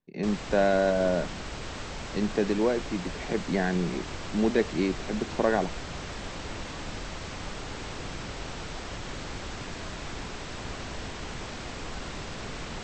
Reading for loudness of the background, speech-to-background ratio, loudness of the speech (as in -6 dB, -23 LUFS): -38.0 LUFS, 10.0 dB, -28.0 LUFS